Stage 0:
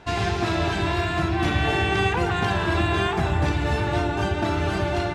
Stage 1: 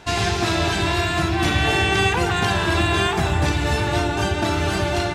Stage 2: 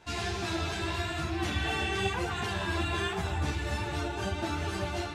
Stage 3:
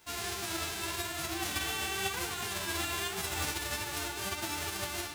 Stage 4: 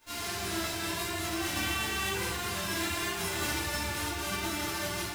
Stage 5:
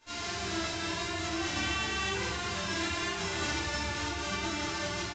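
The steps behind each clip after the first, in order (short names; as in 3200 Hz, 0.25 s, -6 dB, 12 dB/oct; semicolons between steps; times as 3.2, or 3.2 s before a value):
high shelf 4000 Hz +11.5 dB; gain +2 dB
ensemble effect; gain -9 dB
spectral whitening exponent 0.3; gain -4 dB
shoebox room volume 180 m³, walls mixed, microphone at 2.6 m; gain -6.5 dB
downsampling 16000 Hz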